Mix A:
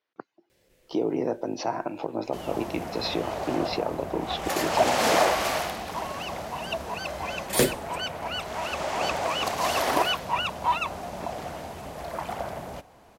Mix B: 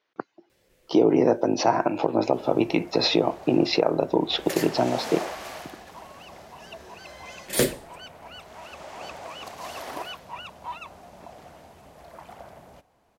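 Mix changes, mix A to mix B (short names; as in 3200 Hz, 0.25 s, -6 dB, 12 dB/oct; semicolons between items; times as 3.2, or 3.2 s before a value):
speech +8.0 dB; second sound -11.5 dB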